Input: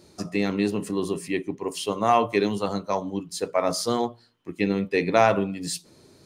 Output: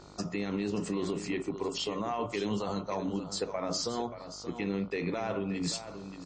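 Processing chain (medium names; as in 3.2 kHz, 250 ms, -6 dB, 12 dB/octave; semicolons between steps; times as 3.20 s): compression 3:1, threshold -24 dBFS, peak gain reduction 9 dB; peak limiter -22.5 dBFS, peak gain reduction 11 dB; delay 579 ms -11 dB; mains buzz 50 Hz, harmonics 29, -54 dBFS -2 dB/octave; MP3 32 kbps 24 kHz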